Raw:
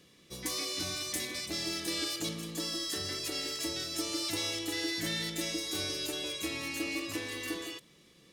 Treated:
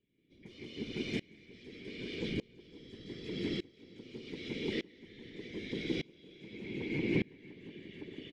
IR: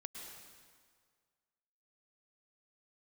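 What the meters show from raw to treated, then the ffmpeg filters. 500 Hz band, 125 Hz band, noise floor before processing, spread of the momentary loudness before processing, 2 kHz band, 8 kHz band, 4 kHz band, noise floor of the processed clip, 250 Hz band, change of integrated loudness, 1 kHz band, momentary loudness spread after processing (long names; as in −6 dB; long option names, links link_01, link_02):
−0.5 dB, +2.0 dB, −61 dBFS, 4 LU, −6.0 dB, −27.5 dB, −12.5 dB, −63 dBFS, 0.0 dB, −6.0 dB, −15.5 dB, 17 LU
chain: -filter_complex "[0:a]aemphasis=mode=reproduction:type=bsi,asplit=2[link_01][link_02];[link_02]acompressor=threshold=-43dB:ratio=6,volume=1dB[link_03];[link_01][link_03]amix=inputs=2:normalize=0,asplit=3[link_04][link_05][link_06];[link_04]bandpass=frequency=270:width_type=q:width=8,volume=0dB[link_07];[link_05]bandpass=frequency=2290:width_type=q:width=8,volume=-6dB[link_08];[link_06]bandpass=frequency=3010:width_type=q:width=8,volume=-9dB[link_09];[link_07][link_08][link_09]amix=inputs=3:normalize=0,aeval=exprs='val(0)*sin(2*PI*63*n/s)':channel_layout=same,asoftclip=type=tanh:threshold=-32dB,afftfilt=real='hypot(re,im)*cos(2*PI*random(0))':imag='hypot(re,im)*sin(2*PI*random(1))':win_size=512:overlap=0.75,aecho=1:1:180|455|508|630:0.668|0.106|0.631|0.2,aeval=exprs='val(0)*pow(10,-28*if(lt(mod(-0.83*n/s,1),2*abs(-0.83)/1000),1-mod(-0.83*n/s,1)/(2*abs(-0.83)/1000),(mod(-0.83*n/s,1)-2*abs(-0.83)/1000)/(1-2*abs(-0.83)/1000))/20)':channel_layout=same,volume=18dB"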